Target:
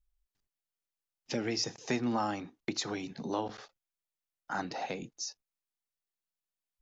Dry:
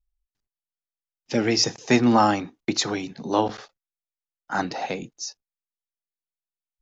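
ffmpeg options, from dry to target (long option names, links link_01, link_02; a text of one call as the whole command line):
ffmpeg -i in.wav -af "acompressor=threshold=-40dB:ratio=2" out.wav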